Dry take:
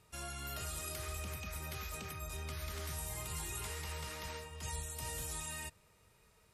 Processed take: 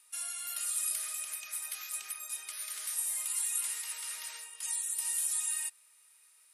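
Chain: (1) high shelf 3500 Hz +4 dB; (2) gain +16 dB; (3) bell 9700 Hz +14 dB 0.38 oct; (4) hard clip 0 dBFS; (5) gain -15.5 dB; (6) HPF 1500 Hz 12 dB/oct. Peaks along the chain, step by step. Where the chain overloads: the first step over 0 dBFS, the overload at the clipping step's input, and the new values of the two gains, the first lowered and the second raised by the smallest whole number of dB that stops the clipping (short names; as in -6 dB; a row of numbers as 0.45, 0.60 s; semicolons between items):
-25.0, -9.0, -3.5, -3.5, -19.0, -18.0 dBFS; no overload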